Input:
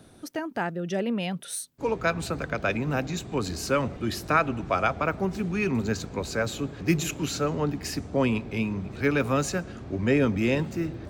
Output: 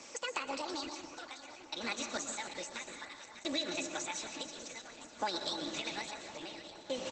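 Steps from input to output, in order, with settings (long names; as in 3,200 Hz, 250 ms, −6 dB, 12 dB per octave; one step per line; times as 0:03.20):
high-pass filter 44 Hz 12 dB per octave
spectral tilt +4.5 dB per octave
notch filter 6,300 Hz, Q 13
comb filter 5.5 ms, depth 57%
downward compressor 12 to 1, threshold −35 dBFS, peak gain reduction 22 dB
change of speed 1.56×
shaped tremolo saw down 0.58 Hz, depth 100%
delay that swaps between a low-pass and a high-pass 300 ms, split 1,500 Hz, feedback 73%, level −9 dB
dense smooth reverb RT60 0.77 s, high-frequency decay 0.65×, pre-delay 105 ms, DRR 7 dB
level +4.5 dB
Opus 12 kbit/s 48,000 Hz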